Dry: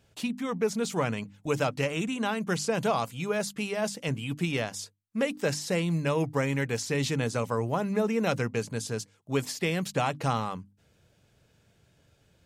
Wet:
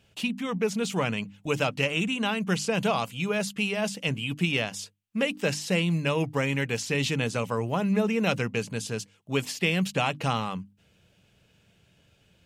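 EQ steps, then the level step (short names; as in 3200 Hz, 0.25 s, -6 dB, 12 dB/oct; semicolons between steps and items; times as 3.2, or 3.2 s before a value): bell 190 Hz +7.5 dB 0.21 oct; bell 2800 Hz +9 dB 0.61 oct; 0.0 dB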